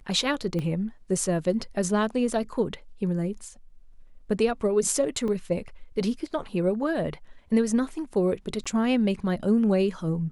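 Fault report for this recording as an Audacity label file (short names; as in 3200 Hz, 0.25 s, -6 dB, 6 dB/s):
0.590000	0.590000	pop -20 dBFS
5.280000	5.280000	gap 2.3 ms
8.640000	8.660000	gap 16 ms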